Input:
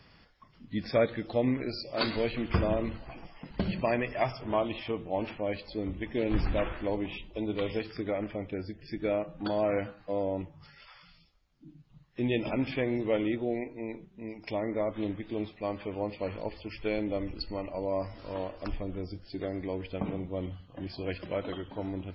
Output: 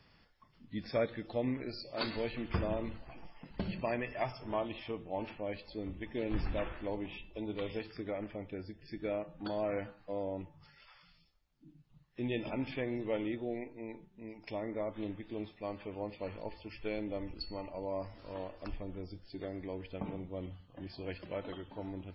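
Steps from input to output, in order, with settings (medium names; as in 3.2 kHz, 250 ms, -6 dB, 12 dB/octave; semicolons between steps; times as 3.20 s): feedback comb 880 Hz, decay 0.35 s, mix 70%; trim +3.5 dB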